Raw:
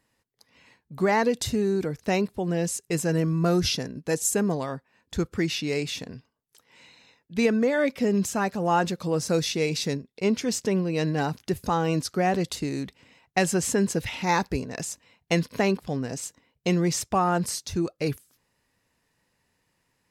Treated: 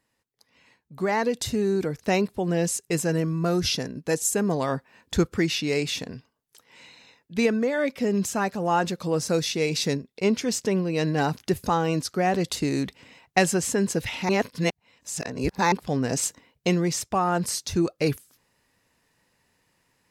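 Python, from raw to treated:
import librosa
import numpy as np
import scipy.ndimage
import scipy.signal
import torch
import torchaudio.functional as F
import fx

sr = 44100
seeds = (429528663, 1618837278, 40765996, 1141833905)

y = fx.edit(x, sr, fx.reverse_span(start_s=14.29, length_s=1.43), tone=tone)
y = fx.low_shelf(y, sr, hz=170.0, db=-3.0)
y = fx.rider(y, sr, range_db=10, speed_s=0.5)
y = y * 10.0 ** (1.5 / 20.0)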